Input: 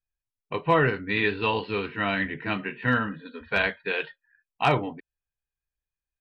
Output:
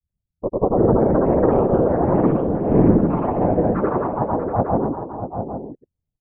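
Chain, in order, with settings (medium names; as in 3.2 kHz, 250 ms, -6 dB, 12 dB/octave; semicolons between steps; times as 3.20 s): spectral gate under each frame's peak -30 dB strong; inverse Chebyshev low-pass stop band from 3 kHz, stop band 70 dB; peaking EQ 250 Hz +7 dB 0.22 oct; in parallel at +2 dB: peak limiter -22 dBFS, peak gain reduction 10 dB; on the sum: whisper effect; granulator; ever faster or slower copies 352 ms, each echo +3 st, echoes 3; on a send: multi-tap echo 153/638/807 ms -17/-9.5/-10.5 dB; on the sum: trim +4 dB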